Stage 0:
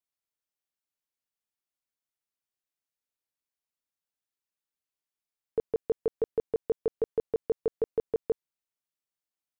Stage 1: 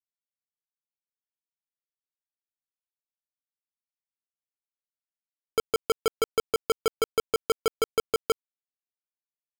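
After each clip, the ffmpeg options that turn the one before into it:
ffmpeg -i in.wav -af "acrusher=bits=3:mix=0:aa=0.000001" out.wav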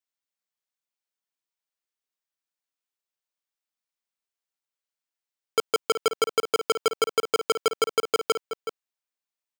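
ffmpeg -i in.wav -filter_complex "[0:a]highpass=frequency=500:poles=1,equalizer=frequency=12000:width_type=o:width=0.34:gain=-9.5,asplit=2[link_01][link_02];[link_02]adelay=373.2,volume=-9dB,highshelf=frequency=4000:gain=-8.4[link_03];[link_01][link_03]amix=inputs=2:normalize=0,volume=5dB" out.wav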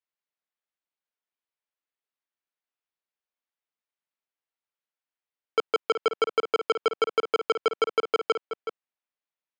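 ffmpeg -i in.wav -af "highpass=250,lowpass=3100" out.wav

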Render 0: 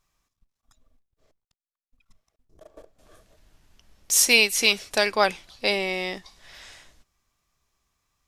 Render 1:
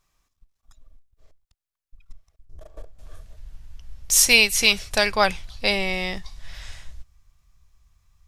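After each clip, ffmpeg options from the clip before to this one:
ffmpeg -i in.wav -af "asubboost=boost=10.5:cutoff=96,volume=2.5dB" out.wav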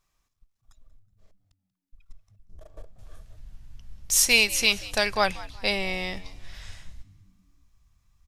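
ffmpeg -i in.wav -filter_complex "[0:a]asplit=4[link_01][link_02][link_03][link_04];[link_02]adelay=186,afreqshift=91,volume=-19dB[link_05];[link_03]adelay=372,afreqshift=182,volume=-28.9dB[link_06];[link_04]adelay=558,afreqshift=273,volume=-38.8dB[link_07];[link_01][link_05][link_06][link_07]amix=inputs=4:normalize=0,volume=-4dB" out.wav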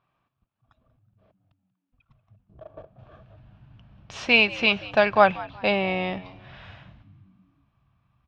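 ffmpeg -i in.wav -af "highpass=130,equalizer=frequency=130:width_type=q:width=4:gain=6,equalizer=frequency=440:width_type=q:width=4:gain=-4,equalizer=frequency=670:width_type=q:width=4:gain=3,equalizer=frequency=2000:width_type=q:width=4:gain=-10,lowpass=frequency=2700:width=0.5412,lowpass=frequency=2700:width=1.3066,volume=7dB" out.wav

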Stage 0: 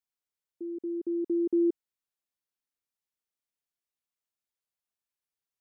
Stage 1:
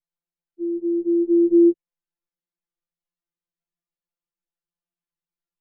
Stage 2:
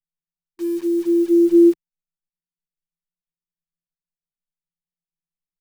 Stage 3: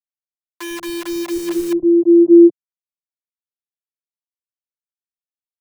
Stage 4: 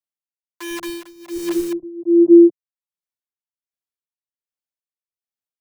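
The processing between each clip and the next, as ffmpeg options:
ffmpeg -i in.wav -af "aemphasis=mode=reproduction:type=riaa,afftfilt=real='re*2.83*eq(mod(b,8),0)':imag='im*2.83*eq(mod(b,8),0)':win_size=2048:overlap=0.75" out.wav
ffmpeg -i in.wav -filter_complex "[0:a]aecho=1:1:6.4:0.56,acrossover=split=220[link_01][link_02];[link_02]acrusher=bits=6:mix=0:aa=0.000001[link_03];[link_01][link_03]amix=inputs=2:normalize=0" out.wav
ffmpeg -i in.wav -filter_complex "[0:a]aeval=exprs='val(0)*gte(abs(val(0)),0.0376)':channel_layout=same,acrossover=split=150|480[link_01][link_02][link_03];[link_01]adelay=100[link_04];[link_02]adelay=770[link_05];[link_04][link_05][link_03]amix=inputs=3:normalize=0,volume=7dB" out.wav
ffmpeg -i in.wav -af "tremolo=f=1.3:d=0.93" out.wav

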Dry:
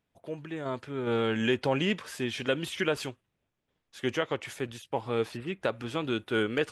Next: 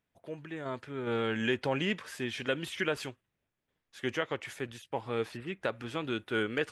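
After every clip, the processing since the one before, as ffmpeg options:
ffmpeg -i in.wav -af "equalizer=frequency=1800:width=1.7:gain=4,volume=-4dB" out.wav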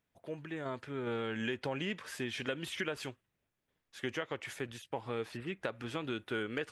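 ffmpeg -i in.wav -af "acompressor=threshold=-34dB:ratio=3" out.wav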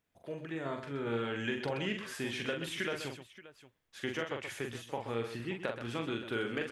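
ffmpeg -i in.wav -af "aecho=1:1:43|127|577:0.562|0.335|0.141" out.wav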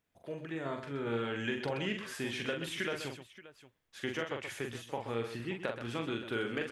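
ffmpeg -i in.wav -af anull out.wav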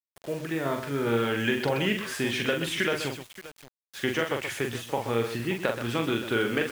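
ffmpeg -i in.wav -af "acrusher=bits=8:mix=0:aa=0.000001,volume=9dB" out.wav

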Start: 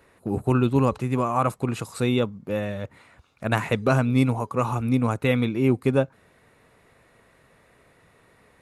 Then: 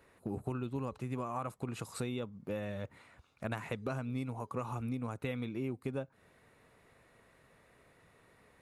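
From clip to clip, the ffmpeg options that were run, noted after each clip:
ffmpeg -i in.wav -af "acompressor=threshold=-28dB:ratio=6,volume=-6.5dB" out.wav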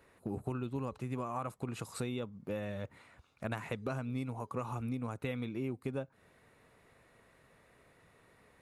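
ffmpeg -i in.wav -af anull out.wav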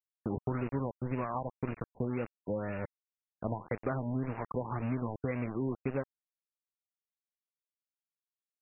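ffmpeg -i in.wav -af "highshelf=frequency=10000:gain=-6,aeval=exprs='val(0)*gte(abs(val(0)),0.01)':channel_layout=same,afftfilt=real='re*lt(b*sr/1024,990*pow(2900/990,0.5+0.5*sin(2*PI*1.9*pts/sr)))':imag='im*lt(b*sr/1024,990*pow(2900/990,0.5+0.5*sin(2*PI*1.9*pts/sr)))':win_size=1024:overlap=0.75,volume=4dB" out.wav

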